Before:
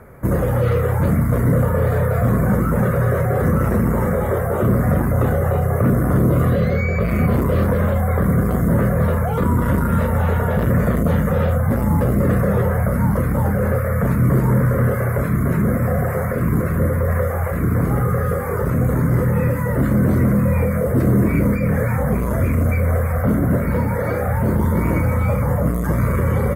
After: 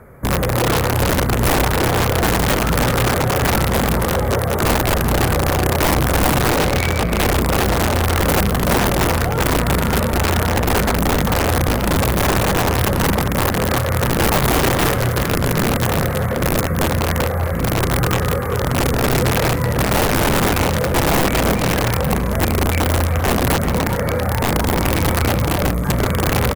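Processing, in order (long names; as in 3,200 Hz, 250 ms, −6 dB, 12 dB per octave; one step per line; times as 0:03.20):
wrap-around overflow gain 12 dB
slap from a distant wall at 67 metres, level −8 dB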